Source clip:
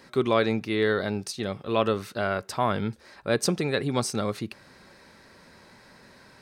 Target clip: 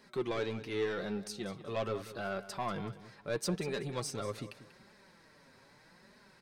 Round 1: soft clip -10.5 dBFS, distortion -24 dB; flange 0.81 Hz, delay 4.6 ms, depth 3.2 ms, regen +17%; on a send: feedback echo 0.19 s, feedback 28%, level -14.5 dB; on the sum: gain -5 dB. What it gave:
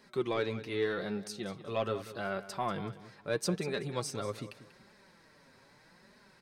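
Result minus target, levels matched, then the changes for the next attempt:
soft clip: distortion -11 dB
change: soft clip -19.5 dBFS, distortion -12 dB

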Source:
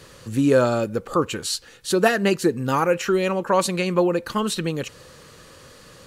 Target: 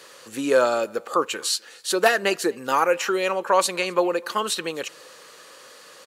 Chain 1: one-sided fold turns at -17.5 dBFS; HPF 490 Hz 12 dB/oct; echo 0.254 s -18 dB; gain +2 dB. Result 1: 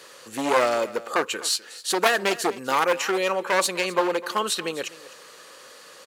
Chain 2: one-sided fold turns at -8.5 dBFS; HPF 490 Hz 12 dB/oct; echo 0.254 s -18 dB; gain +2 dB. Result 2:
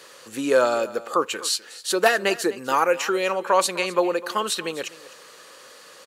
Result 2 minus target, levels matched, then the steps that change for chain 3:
echo-to-direct +9.5 dB
change: echo 0.254 s -27.5 dB

